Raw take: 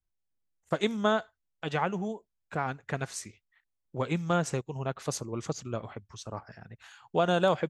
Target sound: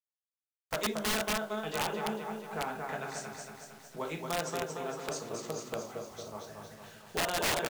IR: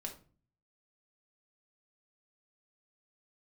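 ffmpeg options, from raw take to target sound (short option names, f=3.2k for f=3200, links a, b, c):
-filter_complex "[0:a]acrossover=split=290|650|2600[a][b][c][d];[a]acompressor=threshold=-47dB:ratio=6[e];[e][b][c][d]amix=inputs=4:normalize=0,aecho=1:1:228|456|684|912|1140|1368|1596|1824:0.596|0.34|0.194|0.11|0.0629|0.0358|0.0204|0.0116[f];[1:a]atrim=start_sample=2205,atrim=end_sample=4410[g];[f][g]afir=irnorm=-1:irlink=0,acrusher=bits=6:mode=log:mix=0:aa=0.000001,lowpass=f=8.5k:w=0.5412,lowpass=f=8.5k:w=1.3066,acrusher=bits=8:mix=0:aa=0.000001,aeval=exprs='(mod(14.1*val(0)+1,2)-1)/14.1':c=same,volume=-1.5dB"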